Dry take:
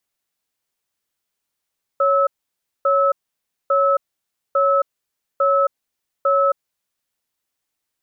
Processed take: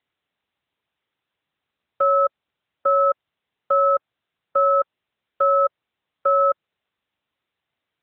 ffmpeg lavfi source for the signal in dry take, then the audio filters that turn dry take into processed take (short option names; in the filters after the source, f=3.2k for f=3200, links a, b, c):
-f lavfi -i "aevalsrc='0.158*(sin(2*PI*555*t)+sin(2*PI*1300*t))*clip(min(mod(t,0.85),0.27-mod(t,0.85))/0.005,0,1)':d=5.03:s=44100"
-ar 8000 -c:a libopencore_amrnb -b:a 12200